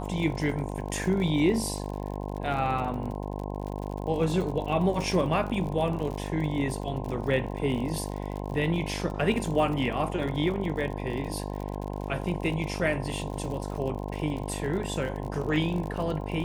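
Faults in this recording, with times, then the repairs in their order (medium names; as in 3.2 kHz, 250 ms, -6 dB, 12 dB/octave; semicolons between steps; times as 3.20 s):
buzz 50 Hz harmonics 21 -34 dBFS
crackle 55 per s -34 dBFS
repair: de-click; de-hum 50 Hz, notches 21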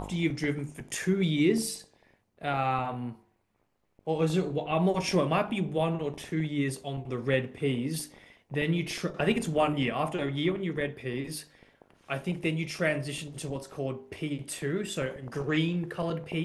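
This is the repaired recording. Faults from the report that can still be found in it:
nothing left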